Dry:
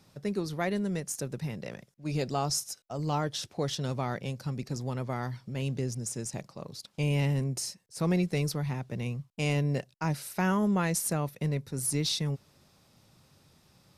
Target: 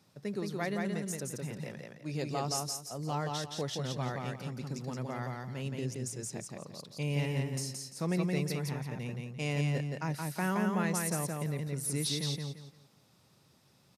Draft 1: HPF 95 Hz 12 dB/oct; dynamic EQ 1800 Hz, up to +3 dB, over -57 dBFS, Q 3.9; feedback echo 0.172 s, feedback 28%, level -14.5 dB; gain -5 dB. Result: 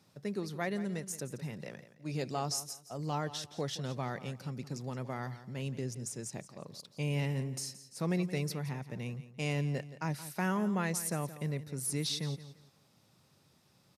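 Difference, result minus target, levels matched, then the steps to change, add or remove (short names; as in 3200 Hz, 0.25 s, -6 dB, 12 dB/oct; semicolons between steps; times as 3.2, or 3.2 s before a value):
echo-to-direct -11.5 dB
change: feedback echo 0.172 s, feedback 28%, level -3 dB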